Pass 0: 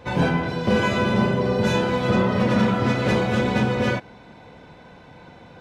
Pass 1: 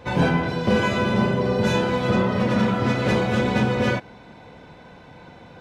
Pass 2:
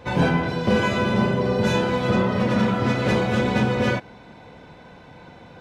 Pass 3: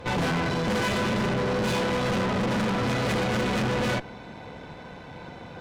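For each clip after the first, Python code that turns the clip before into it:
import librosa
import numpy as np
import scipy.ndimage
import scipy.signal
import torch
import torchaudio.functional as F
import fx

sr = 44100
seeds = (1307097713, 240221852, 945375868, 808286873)

y1 = fx.rider(x, sr, range_db=10, speed_s=0.5)
y2 = y1
y3 = fx.tube_stage(y2, sr, drive_db=31.0, bias=0.7)
y3 = y3 * librosa.db_to_amplitude(7.0)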